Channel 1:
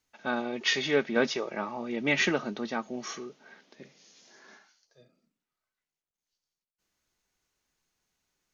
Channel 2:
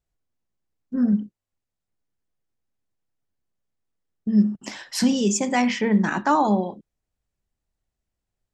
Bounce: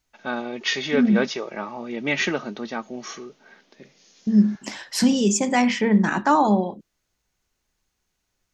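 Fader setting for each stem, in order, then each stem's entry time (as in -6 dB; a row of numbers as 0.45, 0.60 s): +2.5, +1.5 dB; 0.00, 0.00 s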